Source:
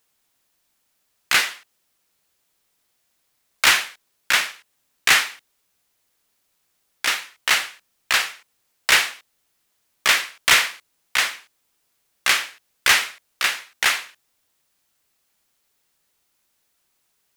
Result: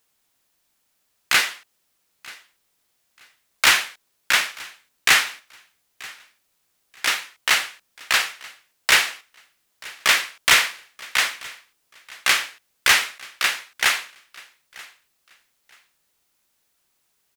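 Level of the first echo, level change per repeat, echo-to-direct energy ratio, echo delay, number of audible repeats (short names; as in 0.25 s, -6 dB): -22.0 dB, -12.5 dB, -22.0 dB, 0.933 s, 2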